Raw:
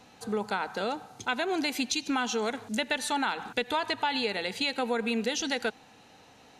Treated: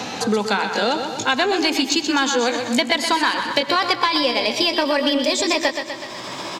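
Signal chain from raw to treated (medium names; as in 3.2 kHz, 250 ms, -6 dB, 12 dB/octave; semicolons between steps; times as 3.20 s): pitch bend over the whole clip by +4.5 st starting unshifted; high-pass 89 Hz; resonant high shelf 7.8 kHz -7 dB, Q 1.5; in parallel at -3.5 dB: saturation -23.5 dBFS, distortion -15 dB; on the sum: feedback delay 124 ms, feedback 46%, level -9 dB; on a send at -23 dB: reverberation RT60 2.5 s, pre-delay 88 ms; on the sum: three bands compressed up and down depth 70%; trim +7 dB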